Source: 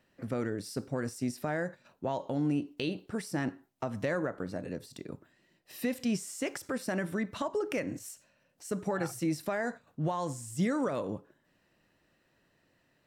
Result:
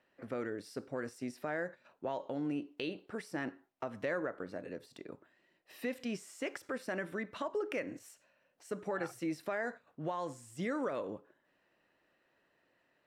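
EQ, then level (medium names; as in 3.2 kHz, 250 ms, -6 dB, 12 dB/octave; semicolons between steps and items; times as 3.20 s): tone controls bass -13 dB, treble -11 dB; dynamic bell 830 Hz, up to -4 dB, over -50 dBFS, Q 1.4; -1.0 dB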